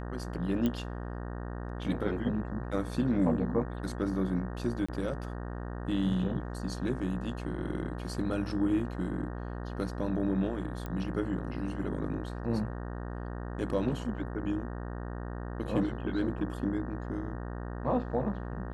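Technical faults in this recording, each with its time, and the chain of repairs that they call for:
mains buzz 60 Hz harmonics 31 −38 dBFS
0:00.66: click −18 dBFS
0:04.86–0:04.88: drop-out 25 ms
0:10.86: click −24 dBFS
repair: click removal
hum removal 60 Hz, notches 31
repair the gap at 0:04.86, 25 ms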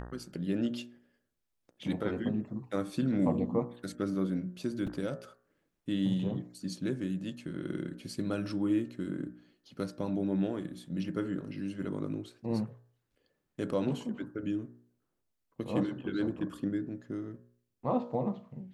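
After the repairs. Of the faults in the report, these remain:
0:10.86: click

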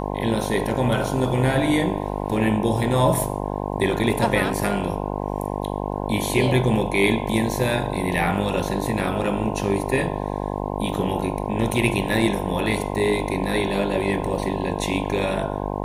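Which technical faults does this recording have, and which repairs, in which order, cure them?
mains buzz 50 Hz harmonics 21 −27 dBFS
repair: hum removal 50 Hz, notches 21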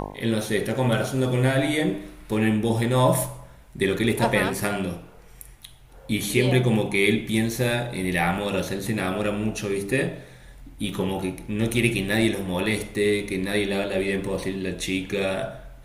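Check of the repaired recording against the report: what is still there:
none of them is left

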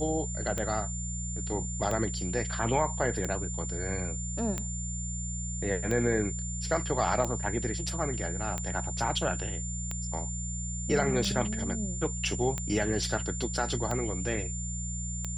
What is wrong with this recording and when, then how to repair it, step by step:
mains hum 60 Hz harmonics 3 −36 dBFS
scratch tick 45 rpm −18 dBFS
whistle 7,200 Hz −37 dBFS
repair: click removal
notch filter 7,200 Hz, Q 30
hum removal 60 Hz, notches 3

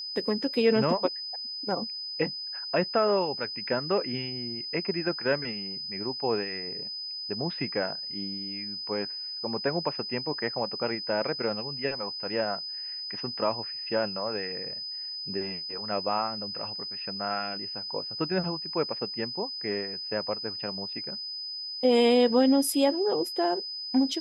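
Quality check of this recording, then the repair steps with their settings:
whistle 5,000 Hz −34 dBFS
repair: notch filter 5,000 Hz, Q 30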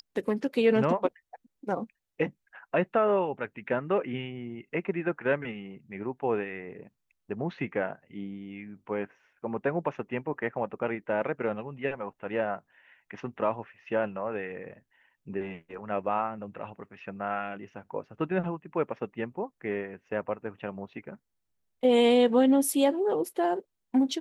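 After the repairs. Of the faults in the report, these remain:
none of them is left

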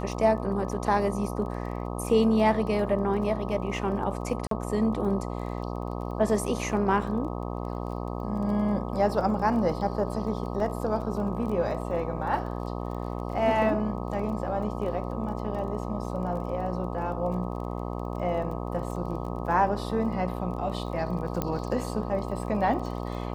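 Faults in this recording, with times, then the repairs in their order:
mains buzz 60 Hz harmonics 21 −33 dBFS
surface crackle 23 per second −37 dBFS
0:04.47–0:04.51: drop-out 43 ms
0:10.60: drop-out 2.4 ms
0:21.42: click −13 dBFS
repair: click removal
hum removal 60 Hz, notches 21
repair the gap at 0:04.47, 43 ms
repair the gap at 0:10.60, 2.4 ms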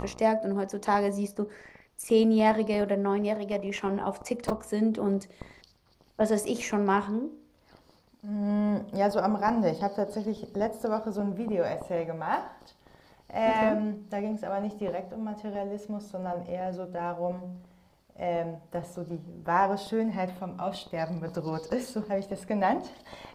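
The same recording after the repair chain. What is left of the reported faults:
none of them is left

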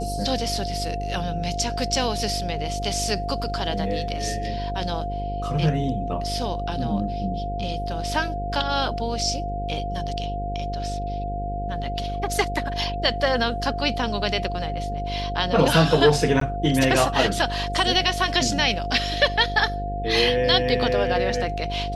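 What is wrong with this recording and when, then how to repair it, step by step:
mains buzz 50 Hz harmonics 11 −30 dBFS
whistle 700 Hz −29 dBFS
0:16.40–0:16.41: drop-out 13 ms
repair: hum removal 50 Hz, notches 11
notch filter 700 Hz, Q 30
repair the gap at 0:16.40, 13 ms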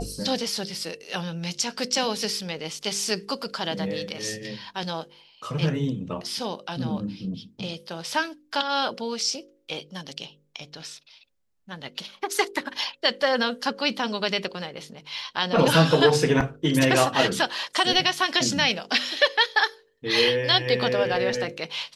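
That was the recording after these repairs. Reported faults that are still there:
none of them is left

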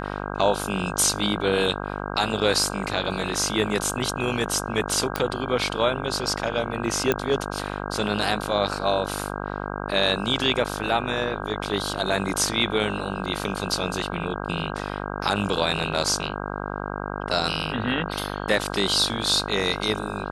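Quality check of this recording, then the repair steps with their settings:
mains buzz 50 Hz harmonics 32 −31 dBFS
0:05.16: click −8 dBFS
0:07.12: click −7 dBFS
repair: click removal
hum removal 50 Hz, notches 32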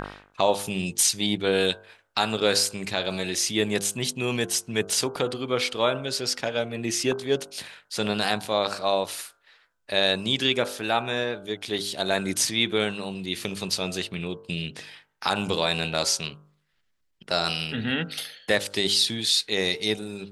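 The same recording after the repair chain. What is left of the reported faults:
none of them is left

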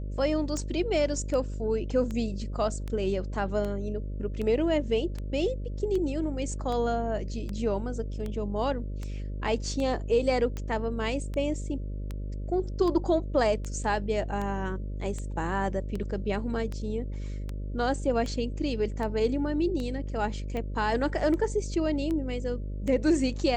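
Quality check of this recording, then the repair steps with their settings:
mains buzz 50 Hz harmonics 12 −34 dBFS
scratch tick 78 rpm −22 dBFS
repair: click removal
hum removal 50 Hz, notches 12

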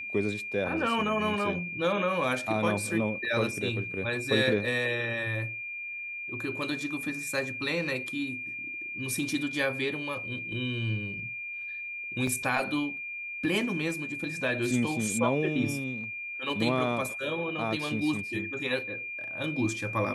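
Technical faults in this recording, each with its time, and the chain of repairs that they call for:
whistle 2,400 Hz −35 dBFS
0:12.27: drop-out 3.7 ms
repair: notch filter 2,400 Hz, Q 30
repair the gap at 0:12.27, 3.7 ms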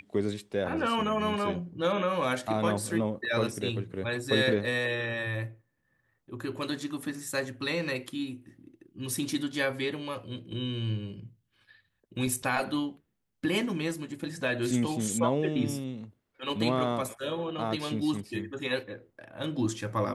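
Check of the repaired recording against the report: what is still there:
none of them is left

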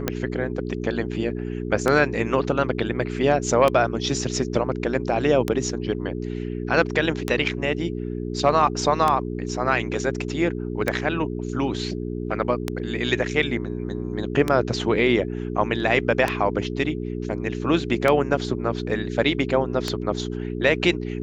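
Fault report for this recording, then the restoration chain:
mains hum 60 Hz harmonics 7 −29 dBFS
scratch tick 33 1/3 rpm −7 dBFS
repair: click removal
hum removal 60 Hz, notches 7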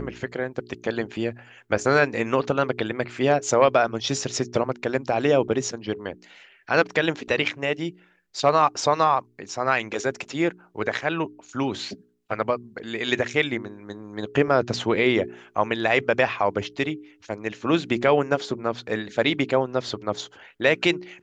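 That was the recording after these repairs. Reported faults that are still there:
none of them is left

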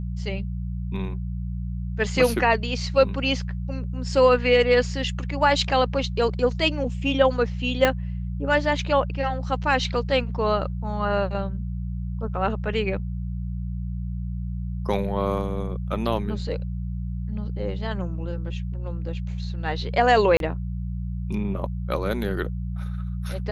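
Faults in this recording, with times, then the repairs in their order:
mains hum 60 Hz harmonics 3 −29 dBFS
0:07.85: click −5 dBFS
0:20.37–0:20.40: drop-out 32 ms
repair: click removal
hum removal 60 Hz, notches 3
repair the gap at 0:20.37, 32 ms

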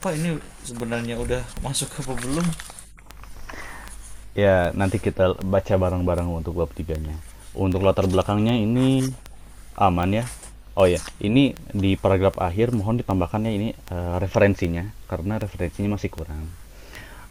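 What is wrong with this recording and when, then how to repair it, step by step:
scratch tick 78 rpm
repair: click removal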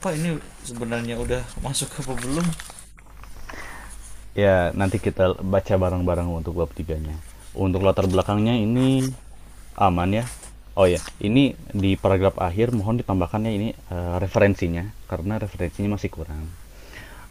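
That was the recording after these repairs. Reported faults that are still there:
none of them is left

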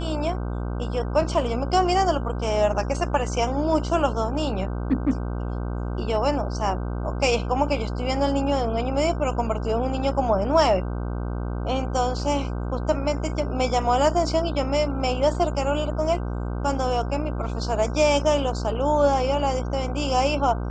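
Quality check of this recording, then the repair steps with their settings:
mains buzz 60 Hz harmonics 26 −28 dBFS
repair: hum removal 60 Hz, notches 26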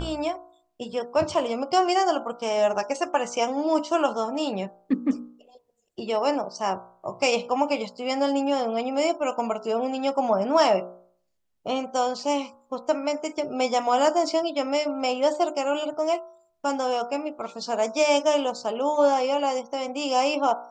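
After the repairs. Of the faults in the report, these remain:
none of them is left

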